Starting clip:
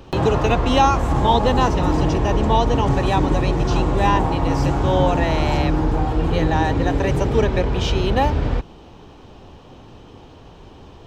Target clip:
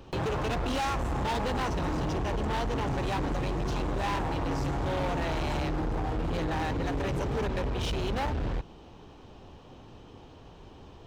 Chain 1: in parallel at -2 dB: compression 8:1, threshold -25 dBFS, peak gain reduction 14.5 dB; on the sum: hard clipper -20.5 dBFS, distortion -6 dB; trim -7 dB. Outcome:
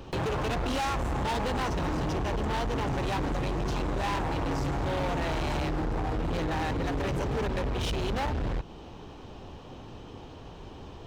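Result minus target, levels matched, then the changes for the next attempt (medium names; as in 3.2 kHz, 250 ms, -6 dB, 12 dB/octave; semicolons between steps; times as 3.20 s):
compression: peak gain reduction +14.5 dB
remove: compression 8:1, threshold -25 dBFS, peak gain reduction 14.5 dB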